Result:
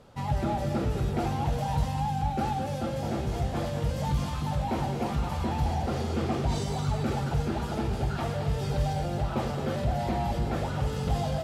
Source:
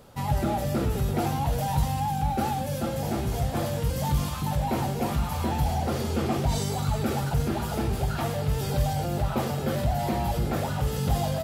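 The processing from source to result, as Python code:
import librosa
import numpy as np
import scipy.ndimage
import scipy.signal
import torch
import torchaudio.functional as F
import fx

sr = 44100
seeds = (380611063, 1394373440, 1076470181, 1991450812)

y = fx.air_absorb(x, sr, metres=56.0)
y = y + 10.0 ** (-8.5 / 20.0) * np.pad(y, (int(217 * sr / 1000.0), 0))[:len(y)]
y = F.gain(torch.from_numpy(y), -2.5).numpy()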